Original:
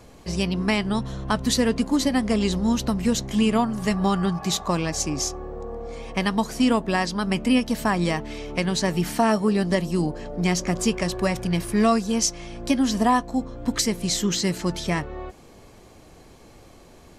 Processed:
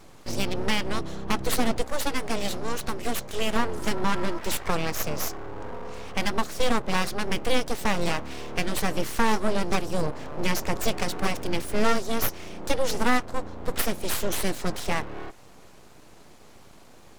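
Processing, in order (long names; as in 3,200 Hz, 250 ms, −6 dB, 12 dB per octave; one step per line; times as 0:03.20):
0:01.82–0:03.56: low-shelf EQ 210 Hz −8 dB
full-wave rectification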